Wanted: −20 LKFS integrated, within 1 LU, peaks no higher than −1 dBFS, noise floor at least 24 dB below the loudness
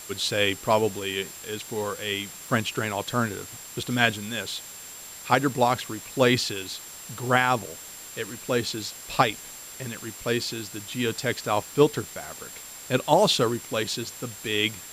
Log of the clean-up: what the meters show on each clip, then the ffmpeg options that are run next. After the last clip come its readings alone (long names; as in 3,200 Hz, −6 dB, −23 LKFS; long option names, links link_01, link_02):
interfering tone 7,400 Hz; level of the tone −43 dBFS; background noise floor −42 dBFS; target noise floor −50 dBFS; integrated loudness −26.0 LKFS; sample peak −2.5 dBFS; target loudness −20.0 LKFS
→ -af "bandreject=frequency=7400:width=30"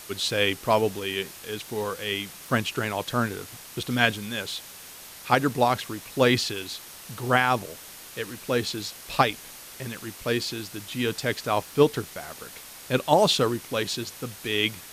interfering tone none found; background noise floor −44 dBFS; target noise floor −50 dBFS
→ -af "afftdn=noise_reduction=6:noise_floor=-44"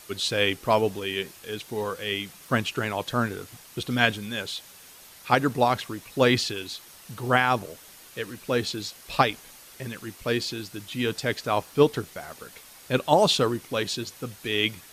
background noise floor −49 dBFS; target noise floor −50 dBFS
→ -af "afftdn=noise_reduction=6:noise_floor=-49"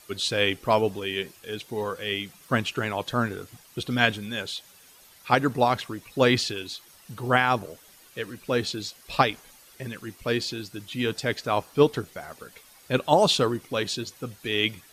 background noise floor −54 dBFS; integrated loudness −26.0 LKFS; sample peak −2.5 dBFS; target loudness −20.0 LKFS
→ -af "volume=6dB,alimiter=limit=-1dB:level=0:latency=1"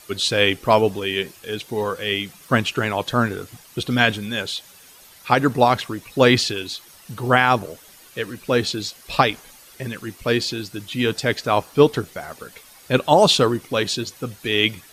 integrated loudness −20.5 LKFS; sample peak −1.0 dBFS; background noise floor −48 dBFS